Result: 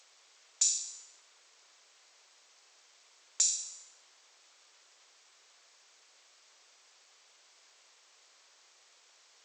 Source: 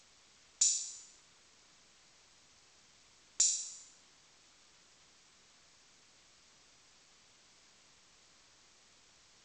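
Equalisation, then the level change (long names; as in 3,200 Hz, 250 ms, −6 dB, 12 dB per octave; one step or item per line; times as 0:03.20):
high-pass filter 430 Hz 24 dB per octave
+1.5 dB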